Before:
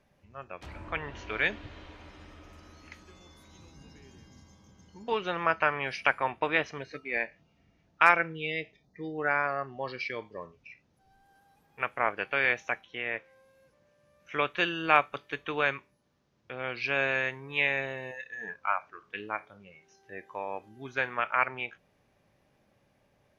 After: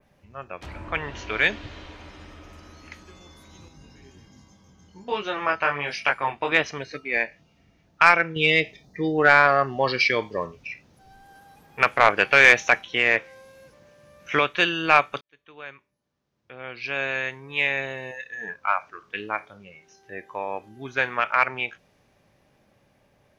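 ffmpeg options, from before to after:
ffmpeg -i in.wav -filter_complex "[0:a]asettb=1/sr,asplit=3[link_01][link_02][link_03];[link_01]atrim=end=3.684[link_04];[link_02]atrim=start=3.68:end=6.52,asetpts=PTS-STARTPTS,afade=type=in:duration=0.004:curve=qsin,afade=type=out:start_time=2.836:duration=0.004:curve=qsin,flanger=delay=19.5:depth=2.8:speed=1.3[link_05];[link_03]atrim=start=6.516[link_06];[link_04][link_05]acrossfade=duration=0.004:curve1=hsin:curve2=qsin[link_07];[link_07][link_06]acrossfade=duration=0.004:curve1=qsin:curve2=hsin,asettb=1/sr,asplit=3[link_08][link_09][link_10];[link_08]atrim=end=8.364[link_11];[link_09]atrim=start=8.36:end=14.39,asetpts=PTS-STARTPTS,afade=type=in:duration=0.004:curve=qsin,afade=type=out:start_time=6.026:duration=0.004:curve=qsin,acontrast=86[link_12];[link_10]atrim=start=14.386[link_13];[link_11][link_12]acrossfade=duration=0.004:curve1=hsin:curve2=qsin[link_14];[link_14][link_13]acrossfade=duration=0.004:curve1=qsin:curve2=hsin,asplit=2[link_15][link_16];[link_15]atrim=end=15.21,asetpts=PTS-STARTPTS,afade=type=out:start_time=15.206:duration=0.004:curve=hsin[link_17];[link_16]atrim=start=15.21,asetpts=PTS-STARTPTS,afade=type=in:duration=3.61[link_18];[link_17][link_18]concat=n=2:v=0:a=1,adynamicequalizer=threshold=0.00447:dfrequency=5700:dqfactor=0.72:tfrequency=5700:tqfactor=0.72:attack=5:release=100:ratio=0.375:range=3:mode=boostabove:tftype=bell,acontrast=44" out.wav

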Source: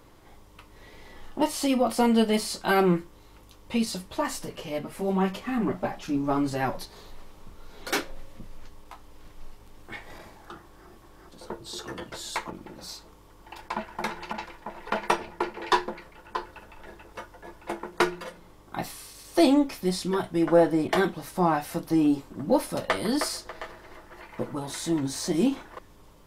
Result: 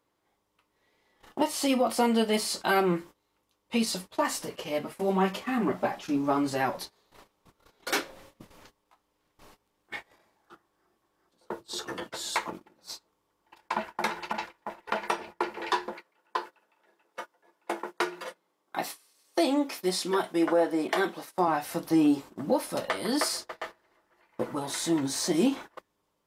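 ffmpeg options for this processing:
ffmpeg -i in.wav -filter_complex "[0:a]asettb=1/sr,asplit=3[link_01][link_02][link_03];[link_01]atrim=end=15.924[link_04];[link_02]atrim=start=15.92:end=21.48,asetpts=PTS-STARTPTS,afade=type=in:duration=0.004:curve=qsin,afade=type=out:start_time=5.556:duration=0.004:curve=qsin,highpass=240[link_05];[link_03]atrim=start=21.476[link_06];[link_04][link_05]acrossfade=duration=0.004:curve1=hsin:curve2=qsin[link_07];[link_07][link_06]acrossfade=duration=0.004:curve1=qsin:curve2=hsin,agate=range=-21dB:threshold=-39dB:ratio=16:detection=peak,highpass=frequency=290:poles=1,alimiter=limit=-17dB:level=0:latency=1:release=359,volume=2.5dB" out.wav

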